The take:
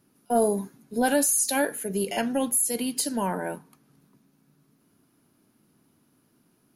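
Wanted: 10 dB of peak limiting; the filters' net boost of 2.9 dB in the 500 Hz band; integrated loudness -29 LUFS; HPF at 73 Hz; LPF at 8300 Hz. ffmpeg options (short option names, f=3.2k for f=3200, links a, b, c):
-af "highpass=73,lowpass=8.3k,equalizer=f=500:t=o:g=3.5,volume=0.5dB,alimiter=limit=-19.5dB:level=0:latency=1"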